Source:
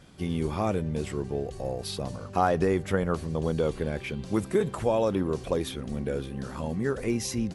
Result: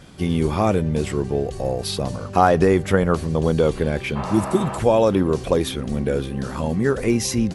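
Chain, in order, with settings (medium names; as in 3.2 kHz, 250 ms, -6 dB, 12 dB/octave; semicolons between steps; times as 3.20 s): spectral replace 4.18–4.73 s, 400–2900 Hz after; trim +8.5 dB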